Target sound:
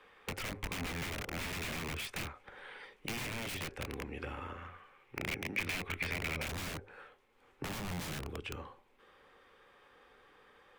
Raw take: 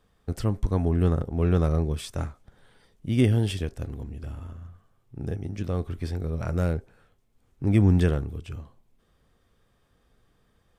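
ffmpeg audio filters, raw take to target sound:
-filter_complex "[0:a]acompressor=threshold=-24dB:ratio=3,asuperstop=centerf=660:order=8:qfactor=6.3,acrossover=split=380 3300:gain=0.0794 1 0.178[a][b][c];[a][b][c]amix=inputs=3:normalize=0,bandreject=f=50:t=h:w=6,bandreject=f=100:t=h:w=6,aeval=exprs='(mod(84.1*val(0)+1,2)-1)/84.1':c=same,acrossover=split=250[d][e];[e]acompressor=threshold=-52dB:ratio=6[f];[d][f]amix=inputs=2:normalize=0,asetnsamples=n=441:p=0,asendcmd='4.58 equalizer g 14.5;6.47 equalizer g 3',equalizer=f=2.3k:w=2.2:g=8.5,volume=11dB"

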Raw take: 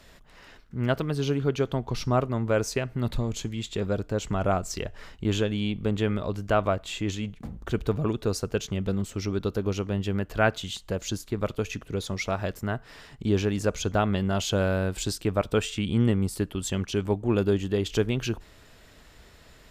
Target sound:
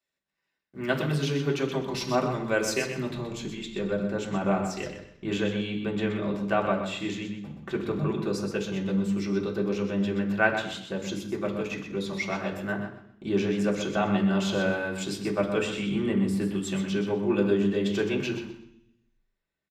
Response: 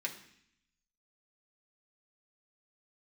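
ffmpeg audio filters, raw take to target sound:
-filter_complex "[0:a]asetnsamples=n=441:p=0,asendcmd='3.02 highshelf g -8.5',highshelf=f=4.2k:g=4,agate=range=-33dB:threshold=-39dB:ratio=16:detection=peak,aecho=1:1:125|250|375:0.376|0.0827|0.0182[a];[1:a]atrim=start_sample=2205[b];[a][b]afir=irnorm=-1:irlink=0"

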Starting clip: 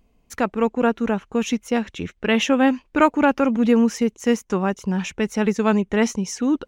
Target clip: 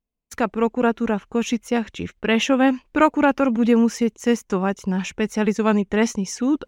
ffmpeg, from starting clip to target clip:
-af "agate=range=-25dB:threshold=-44dB:ratio=16:detection=peak"

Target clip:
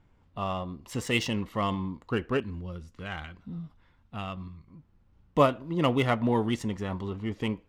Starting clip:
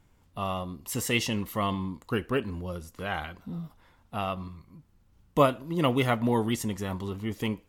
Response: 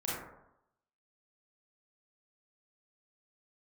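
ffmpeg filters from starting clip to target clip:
-filter_complex "[0:a]asettb=1/sr,asplit=3[a][b][c];[a]atrim=end=2.404[d];[b]atrim=start=2.4:end=4.68,asetpts=PTS-STARTPTS,afade=t=in:d=0.004:c=qsin,afade=t=out:st=2.276:d=0.004:c=qsin,equalizer=f=680:t=o:w=2.2:g=-8.5[e];[c]atrim=start=4.676[f];[d][e]acrossfade=d=0.004:c1=hsin:c2=qsin[g];[g][f]acrossfade=d=0.004:c1=qsin:c2=hsin,adynamicsmooth=sensitivity=4.5:basefreq=3.9k"

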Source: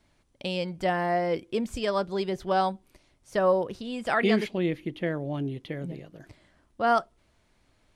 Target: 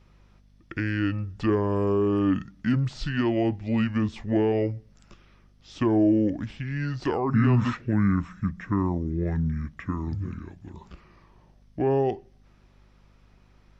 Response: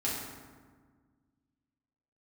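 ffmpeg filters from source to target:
-filter_complex "[0:a]asetrate=25442,aresample=44100,asplit=2[a][b];[b]alimiter=limit=-19dB:level=0:latency=1:release=22,volume=2dB[c];[a][c]amix=inputs=2:normalize=0,acrossover=split=420[d][e];[e]acompressor=threshold=-26dB:ratio=10[f];[d][f]amix=inputs=2:normalize=0,aeval=exprs='val(0)+0.002*(sin(2*PI*50*n/s)+sin(2*PI*2*50*n/s)/2+sin(2*PI*3*50*n/s)/3+sin(2*PI*4*50*n/s)/4+sin(2*PI*5*50*n/s)/5)':c=same,volume=-2.5dB"

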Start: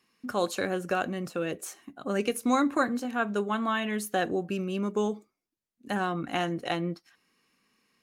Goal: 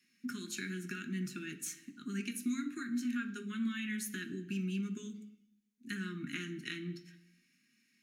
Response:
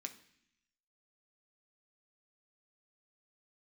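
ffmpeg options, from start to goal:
-filter_complex "[0:a]acompressor=threshold=-30dB:ratio=6,asuperstop=centerf=700:order=8:qfactor=0.6[a];[1:a]atrim=start_sample=2205[b];[a][b]afir=irnorm=-1:irlink=0,volume=1.5dB"

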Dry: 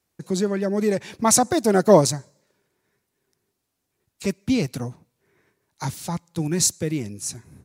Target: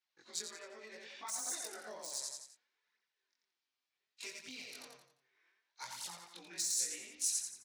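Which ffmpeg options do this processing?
-filter_complex "[0:a]afftfilt=real='re':imag='-im':win_size=2048:overlap=0.75,acrossover=split=140|1100|4300[a][b][c][d];[a]aecho=1:1:3.3:0.78[e];[d]aeval=exprs='sgn(val(0))*max(abs(val(0))-0.00794,0)':c=same[f];[e][b][c][f]amix=inputs=4:normalize=0,lowpass=9.1k,aecho=1:1:87|174|261|348|435:0.631|0.24|0.0911|0.0346|0.0132,deesser=0.65,lowshelf=f=420:g=-7.5,acompressor=threshold=-36dB:ratio=4,flanger=delay=0.1:depth=7.8:regen=-15:speed=0.66:shape=triangular,aderivative,volume=11dB"

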